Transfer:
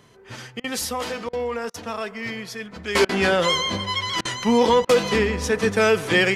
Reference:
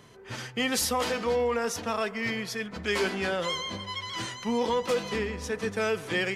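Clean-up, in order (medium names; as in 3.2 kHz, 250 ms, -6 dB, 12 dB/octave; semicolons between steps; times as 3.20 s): interpolate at 0.60/1.29/1.70/3.05/4.21/4.85 s, 40 ms; gain correction -10 dB, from 2.95 s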